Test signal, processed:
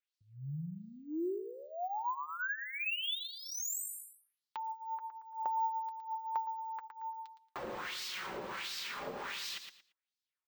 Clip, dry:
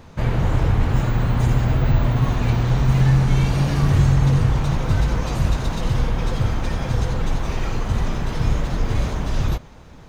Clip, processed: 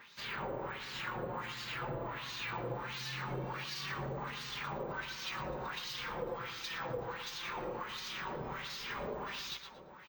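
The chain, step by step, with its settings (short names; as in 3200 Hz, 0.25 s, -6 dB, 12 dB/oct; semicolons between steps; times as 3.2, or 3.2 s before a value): LFO band-pass sine 1.4 Hz 550–4700 Hz; bell 680 Hz -9.5 dB 0.47 oct; on a send: feedback echo 0.114 s, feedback 21%, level -11 dB; on the sum: dynamic EQ 500 Hz, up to +5 dB, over -42 dBFS, Q 0.73; compressor 4:1, threshold -42 dBFS; flange 0.22 Hz, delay 4.9 ms, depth 1.2 ms, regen -32%; careless resampling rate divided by 2×, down filtered, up hold; gain +7.5 dB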